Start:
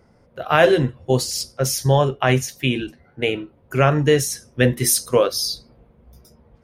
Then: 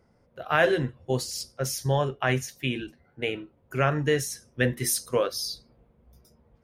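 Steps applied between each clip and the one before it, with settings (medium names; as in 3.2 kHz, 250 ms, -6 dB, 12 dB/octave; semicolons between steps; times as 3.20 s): dynamic bell 1.7 kHz, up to +5 dB, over -36 dBFS, Q 2; trim -8.5 dB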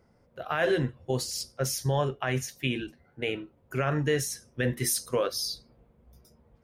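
peak limiter -16.5 dBFS, peak gain reduction 8.5 dB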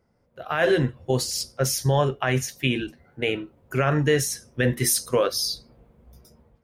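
level rider gain up to 10.5 dB; trim -4.5 dB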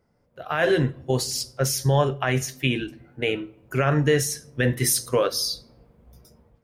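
simulated room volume 2100 m³, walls furnished, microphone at 0.37 m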